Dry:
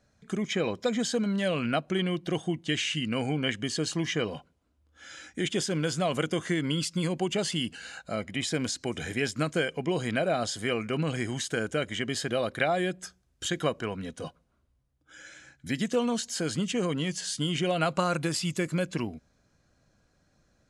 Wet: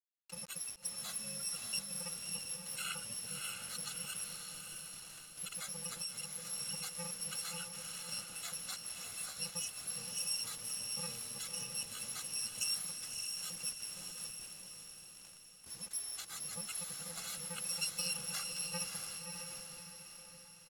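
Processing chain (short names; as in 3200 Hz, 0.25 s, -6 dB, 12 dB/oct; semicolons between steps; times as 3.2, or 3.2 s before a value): FFT order left unsorted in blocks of 128 samples; HPF 520 Hz 6 dB/oct; spectral gate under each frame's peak -15 dB strong; echo 0.763 s -17 dB; bit-crush 7-bit; LPF 9800 Hz 12 dB/oct; diffused feedback echo 0.606 s, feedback 49%, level -4 dB; 5.93–6.53 compressor, threshold -32 dBFS, peak gain reduction 6.5 dB; gain -6.5 dB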